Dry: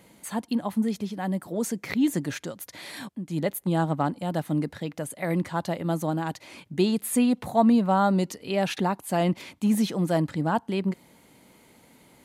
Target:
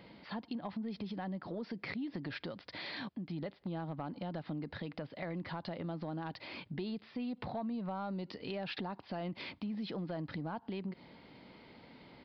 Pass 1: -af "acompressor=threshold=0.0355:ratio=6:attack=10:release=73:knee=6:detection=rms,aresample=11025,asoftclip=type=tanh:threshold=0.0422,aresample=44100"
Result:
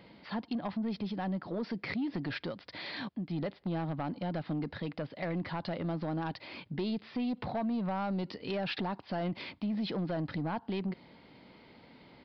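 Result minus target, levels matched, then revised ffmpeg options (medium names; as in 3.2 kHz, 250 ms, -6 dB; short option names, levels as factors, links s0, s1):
compression: peak gain reduction -7.5 dB
-af "acompressor=threshold=0.0126:ratio=6:attack=10:release=73:knee=6:detection=rms,aresample=11025,asoftclip=type=tanh:threshold=0.0422,aresample=44100"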